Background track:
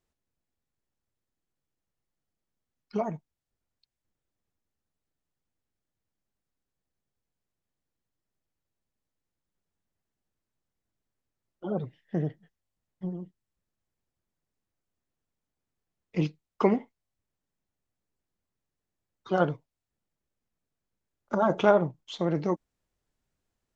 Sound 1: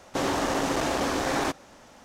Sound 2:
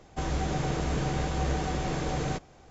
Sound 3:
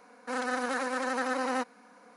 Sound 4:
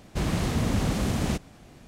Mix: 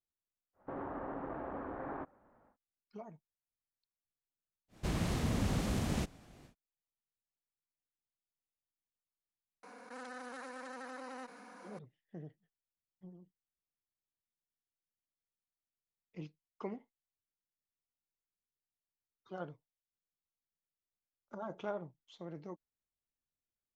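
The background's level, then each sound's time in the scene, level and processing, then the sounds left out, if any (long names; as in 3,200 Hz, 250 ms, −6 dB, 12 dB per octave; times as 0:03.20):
background track −19 dB
0:00.53: mix in 1 −15 dB, fades 0.10 s + low-pass filter 1,500 Hz 24 dB per octave
0:04.68: mix in 4 −8 dB, fades 0.10 s
0:09.63: mix in 3 −17.5 dB + envelope flattener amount 70%
not used: 2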